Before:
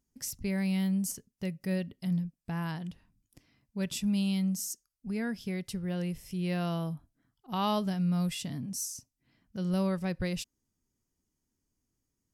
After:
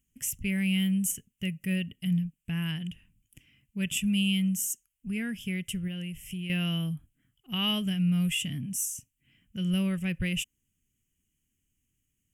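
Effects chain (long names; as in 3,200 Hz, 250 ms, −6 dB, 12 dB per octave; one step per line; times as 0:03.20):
drawn EQ curve 160 Hz 0 dB, 910 Hz −17 dB, 3,000 Hz +11 dB, 4,200 Hz −20 dB, 7,200 Hz +3 dB
0:05.87–0:06.50: downward compressor 10 to 1, threshold −37 dBFS, peak gain reduction 8.5 dB
level +4 dB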